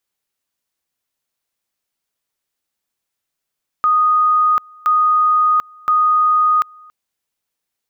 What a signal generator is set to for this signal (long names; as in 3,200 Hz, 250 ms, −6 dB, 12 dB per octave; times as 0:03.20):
tone at two levels in turn 1,240 Hz −10.5 dBFS, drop 28.5 dB, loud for 0.74 s, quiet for 0.28 s, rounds 3